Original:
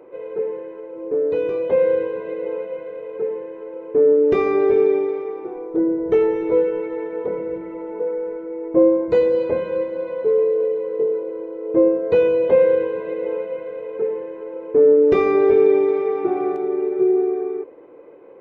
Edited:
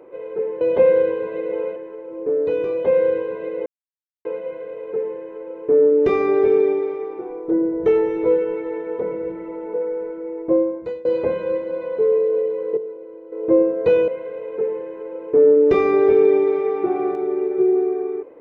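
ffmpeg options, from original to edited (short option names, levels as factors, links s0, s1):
-filter_complex "[0:a]asplit=8[s0][s1][s2][s3][s4][s5][s6][s7];[s0]atrim=end=0.612[s8];[s1]atrim=start=12.338:end=13.492[s9];[s2]atrim=start=0.608:end=2.51,asetpts=PTS-STARTPTS,afade=t=out:st=1.898:d=0.004:c=hsin,apad=pad_dur=0.59[s10];[s3]atrim=start=2.51:end=9.31,asetpts=PTS-STARTPTS,afade=t=in:d=0.004:c=hsin,afade=t=out:st=6.05:d=0.75:silence=0.0668344[s11];[s4]atrim=start=9.31:end=11.032,asetpts=PTS-STARTPTS,afade=t=in:d=0.004:c=hsin:silence=0.0668344[s12];[s5]atrim=start=11.028:end=11.582,asetpts=PTS-STARTPTS,volume=0.355[s13];[s6]atrim=start=11.578:end=12.342[s14];[s7]atrim=start=13.488[s15];[s8][s9]acrossfade=d=0.004:c1=hsin:c2=hsin[s16];[s10][s11][s12]concat=n=3:v=0:a=1[s17];[s16][s17]acrossfade=d=0.004:c1=hsin:c2=hsin[s18];[s18][s13]acrossfade=d=0.004:c1=hsin:c2=hsin[s19];[s19][s14]acrossfade=d=0.004:c1=hsin:c2=hsin[s20];[s20][s15]acrossfade=d=0.004:c1=hsin:c2=hsin"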